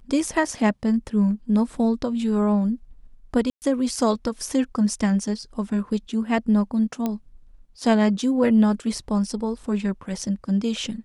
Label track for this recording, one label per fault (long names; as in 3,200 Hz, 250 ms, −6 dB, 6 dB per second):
3.500000	3.620000	drop-out 119 ms
7.060000	7.060000	click −13 dBFS